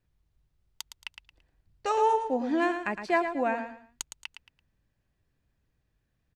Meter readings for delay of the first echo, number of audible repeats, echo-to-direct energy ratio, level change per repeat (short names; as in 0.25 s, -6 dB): 0.112 s, 3, -8.0 dB, -11.0 dB